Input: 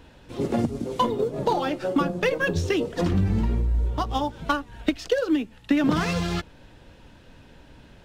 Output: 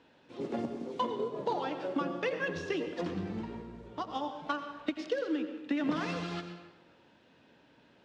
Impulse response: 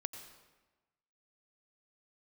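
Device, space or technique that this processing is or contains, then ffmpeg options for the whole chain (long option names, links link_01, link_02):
supermarket ceiling speaker: -filter_complex "[0:a]highpass=210,lowpass=5100[link_01];[1:a]atrim=start_sample=2205[link_02];[link_01][link_02]afir=irnorm=-1:irlink=0,volume=-7.5dB"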